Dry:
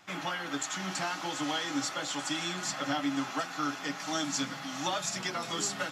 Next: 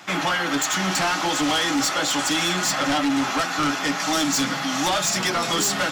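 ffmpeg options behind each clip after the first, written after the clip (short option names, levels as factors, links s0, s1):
-filter_complex "[0:a]highpass=130,asplit=2[s0][s1];[s1]aeval=exprs='0.119*sin(PI/2*3.98*val(0)/0.119)':c=same,volume=0.398[s2];[s0][s2]amix=inputs=2:normalize=0,volume=1.58"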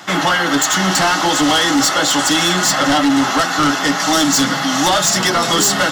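-af "bandreject=f=2400:w=5.8,volume=2.51"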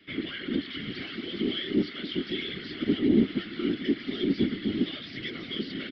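-filter_complex "[0:a]asplit=3[s0][s1][s2];[s0]bandpass=f=270:t=q:w=8,volume=1[s3];[s1]bandpass=f=2290:t=q:w=8,volume=0.501[s4];[s2]bandpass=f=3010:t=q:w=8,volume=0.355[s5];[s3][s4][s5]amix=inputs=3:normalize=0,aresample=11025,aresample=44100,afftfilt=real='hypot(re,im)*cos(2*PI*random(0))':imag='hypot(re,im)*sin(2*PI*random(1))':win_size=512:overlap=0.75"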